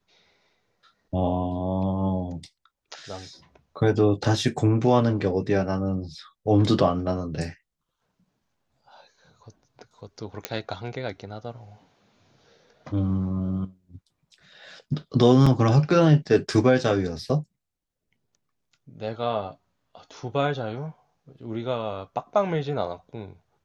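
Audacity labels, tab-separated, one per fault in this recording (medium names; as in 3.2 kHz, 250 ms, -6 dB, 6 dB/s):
10.450000	10.450000	pop -9 dBFS
15.460000	15.460000	dropout 4.9 ms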